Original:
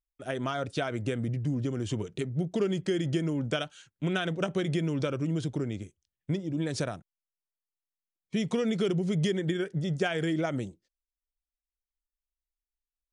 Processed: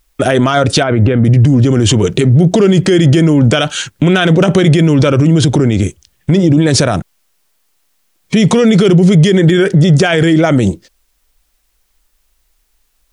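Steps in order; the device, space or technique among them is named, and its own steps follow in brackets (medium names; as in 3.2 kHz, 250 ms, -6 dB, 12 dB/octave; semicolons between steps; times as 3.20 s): loud club master (compression 2.5:1, threshold -32 dBFS, peak gain reduction 7 dB; hard clipper -23.5 dBFS, distortion -36 dB; loudness maximiser +34 dB); 0.83–1.25 s: distance through air 410 m; trim -1 dB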